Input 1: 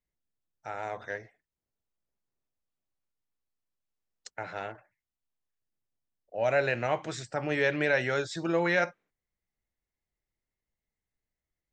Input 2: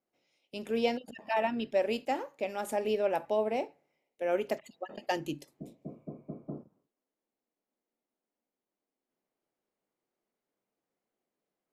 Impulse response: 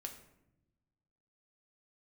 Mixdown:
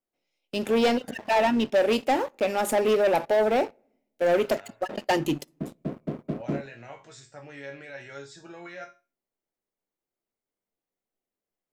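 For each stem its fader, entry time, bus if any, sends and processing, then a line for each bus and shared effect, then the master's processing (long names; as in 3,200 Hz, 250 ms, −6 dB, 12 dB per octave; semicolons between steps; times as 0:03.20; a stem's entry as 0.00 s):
0.0 dB, 0.00 s, no send, high-shelf EQ 7,000 Hz +11 dB; brickwall limiter −19 dBFS, peak gain reduction 5.5 dB; resonators tuned to a chord F#2 major, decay 0.29 s
0.0 dB, 0.00 s, send −23.5 dB, leveller curve on the samples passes 3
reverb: on, pre-delay 5 ms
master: no processing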